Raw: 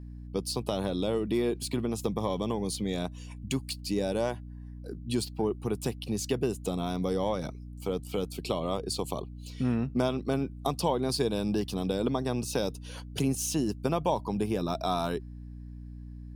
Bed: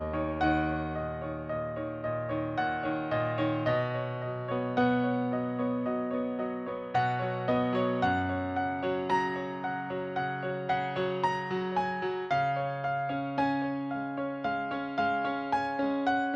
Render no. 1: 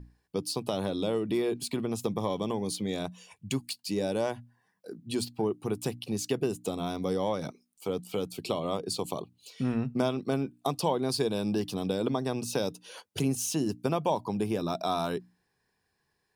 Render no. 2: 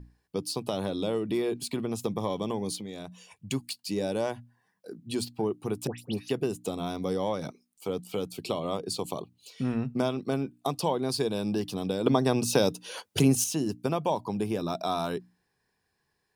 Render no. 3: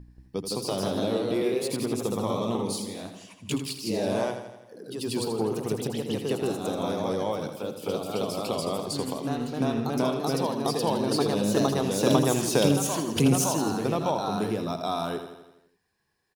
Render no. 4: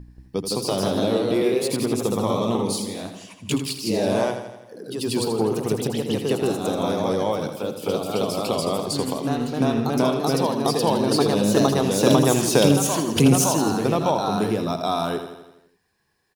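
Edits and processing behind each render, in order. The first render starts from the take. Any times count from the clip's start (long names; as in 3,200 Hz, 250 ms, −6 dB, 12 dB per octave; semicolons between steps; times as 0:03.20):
mains-hum notches 60/120/180/240/300 Hz
0:02.76–0:03.51: downward compressor 3 to 1, threshold −37 dBFS; 0:05.87–0:06.29: all-pass dispersion highs, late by 111 ms, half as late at 1,700 Hz; 0:12.06–0:13.44: clip gain +6.5 dB
repeating echo 83 ms, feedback 57%, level −9 dB; delay with pitch and tempo change per echo 182 ms, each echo +1 semitone, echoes 2
level +5.5 dB; brickwall limiter −3 dBFS, peak gain reduction 2.5 dB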